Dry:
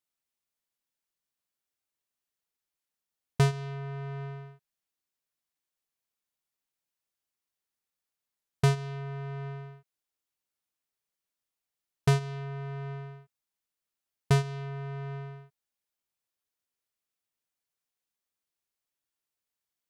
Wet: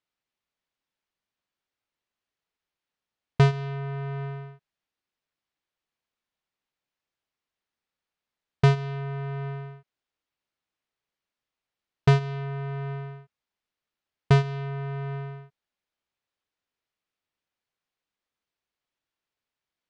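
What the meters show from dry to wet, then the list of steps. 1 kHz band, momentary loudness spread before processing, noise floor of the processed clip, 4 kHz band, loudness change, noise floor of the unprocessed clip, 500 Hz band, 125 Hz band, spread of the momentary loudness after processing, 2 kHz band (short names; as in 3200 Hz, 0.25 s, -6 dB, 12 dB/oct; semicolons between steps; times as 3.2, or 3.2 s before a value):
+5.0 dB, 17 LU, under -85 dBFS, +2.5 dB, +5.0 dB, under -85 dBFS, +5.0 dB, +5.0 dB, 17 LU, +5.0 dB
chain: LPF 3900 Hz 12 dB/oct; gain +5 dB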